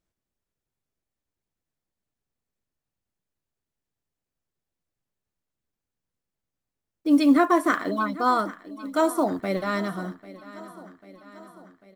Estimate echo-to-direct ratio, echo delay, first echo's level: -16.0 dB, 794 ms, -18.0 dB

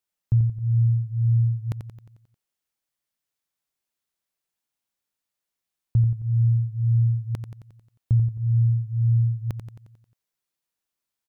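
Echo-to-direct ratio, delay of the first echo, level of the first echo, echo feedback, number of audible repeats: -6.5 dB, 89 ms, -8.0 dB, 55%, 6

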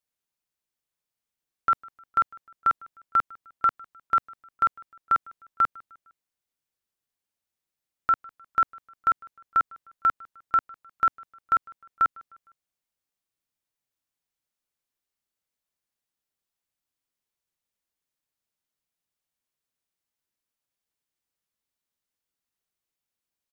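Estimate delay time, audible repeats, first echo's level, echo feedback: 153 ms, 2, -24.0 dB, 46%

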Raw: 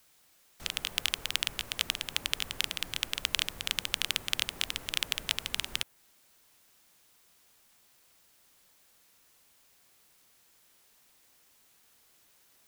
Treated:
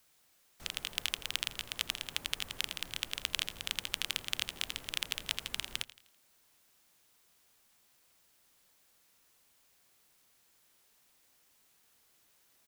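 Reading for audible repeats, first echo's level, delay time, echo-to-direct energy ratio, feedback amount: 3, -17.0 dB, 83 ms, -16.0 dB, 42%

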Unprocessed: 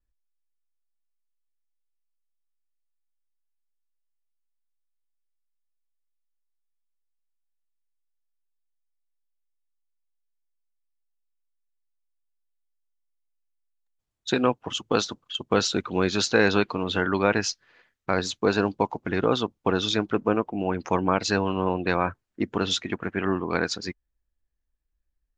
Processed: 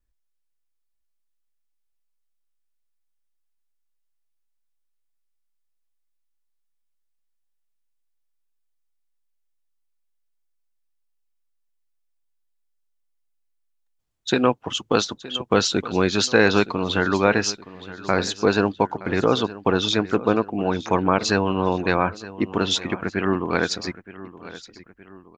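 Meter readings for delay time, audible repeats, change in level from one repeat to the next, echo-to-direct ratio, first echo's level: 919 ms, 2, -6.5 dB, -16.0 dB, -17.0 dB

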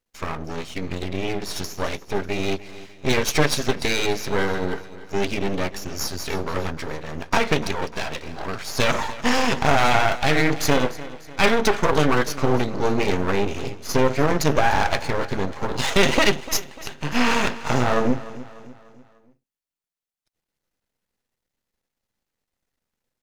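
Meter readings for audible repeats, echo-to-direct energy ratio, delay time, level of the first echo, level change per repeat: 3, -16.0 dB, 297 ms, -17.0 dB, -6.5 dB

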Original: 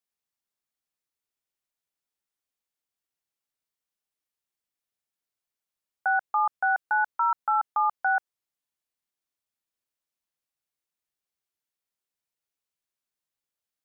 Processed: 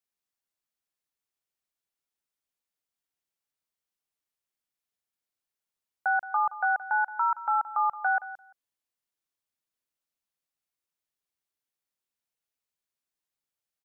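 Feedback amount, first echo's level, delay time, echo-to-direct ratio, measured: 16%, -15.0 dB, 172 ms, -15.0 dB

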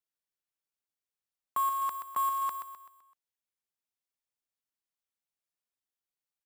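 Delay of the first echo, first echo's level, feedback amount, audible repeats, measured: 128 ms, -8.0 dB, 44%, 4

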